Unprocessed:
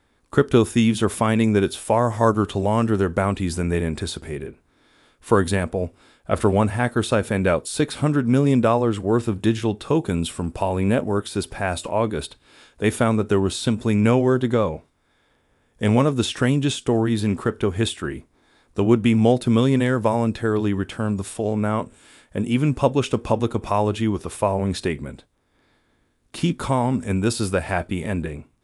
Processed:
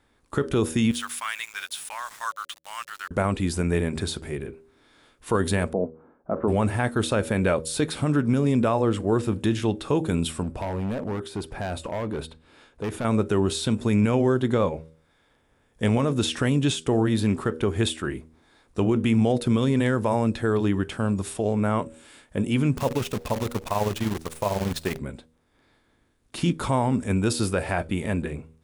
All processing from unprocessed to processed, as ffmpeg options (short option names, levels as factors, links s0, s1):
-filter_complex "[0:a]asettb=1/sr,asplit=3[s0][s1][s2];[s0]atrim=end=0.914[s3];[s1]atrim=start=0.91:end=3.11,asetpts=PTS-STARTPTS,afade=t=in:d=0.004:c=qsin,afade=t=out:st=2.196:d=0.004:c=qsin,highpass=f=1300:w=0.5412,highpass=f=1300:w=1.3066,aeval=exprs='val(0)*gte(abs(val(0)),0.0112)':c=same[s4];[s2]atrim=start=3.106[s5];[s3][s4]acrossfade=d=0.004:c1=hsin:c2=qsin[s6];[s6][s5]acrossfade=d=0.004:c1=qsin:c2=hsin,asettb=1/sr,asplit=3[s7][s8][s9];[s7]atrim=end=5.734[s10];[s8]atrim=start=5.73:end=6.48,asetpts=PTS-STARTPTS,afade=t=in:d=0.004:c=qsin,afade=t=out:st=0.746:d=0.004:c=qsin,lowpass=f=1200:w=0.5412,lowpass=f=1200:w=1.3066,lowshelf=f=140:t=q:w=1.5:g=-10.5[s11];[s9]atrim=start=6.476[s12];[s10][s11]acrossfade=d=0.004:c1=hsin:c2=qsin[s13];[s13][s12]acrossfade=d=0.004:c1=qsin:c2=hsin,asettb=1/sr,asplit=3[s14][s15][s16];[s14]atrim=end=10.434[s17];[s15]atrim=start=10.43:end=13.05,asetpts=PTS-STARTPTS,afade=t=in:d=0.004:c=qsin,afade=t=out:st=2.616:d=0.004:c=qsin,acompressor=threshold=0.0794:ratio=2:attack=3.2:release=140:knee=1:detection=peak,highshelf=f=2700:g=-9.5,asoftclip=type=hard:threshold=0.0668[s18];[s16]atrim=start=13.046[s19];[s17][s18]acrossfade=d=0.004:c1=hsin:c2=qsin[s20];[s20][s19]acrossfade=d=0.004:c1=qsin:c2=hsin,asettb=1/sr,asplit=3[s21][s22][s23];[s21]atrim=end=22.774[s24];[s22]atrim=start=22.77:end=24.99,asetpts=PTS-STARTPTS,afade=t=in:d=0.004:c=qsin,afade=t=out:st=2.216:d=0.004:c=qsin,equalizer=f=320:w=4.9:g=-5,tremolo=f=20:d=0.65,acrusher=bits=6:dc=4:mix=0:aa=0.000001[s25];[s23]atrim=start=24.986[s26];[s24][s25]acrossfade=d=0.004:c1=hsin:c2=qsin[s27];[s27][s26]acrossfade=d=0.004:c1=qsin:c2=hsin,bandreject=f=79.87:t=h:w=4,bandreject=f=159.74:t=h:w=4,bandreject=f=239.61:t=h:w=4,bandreject=f=319.48:t=h:w=4,bandreject=f=399.35:t=h:w=4,bandreject=f=479.22:t=h:w=4,bandreject=f=559.09:t=h:w=4,alimiter=limit=0.266:level=0:latency=1:release=32,volume=0.891"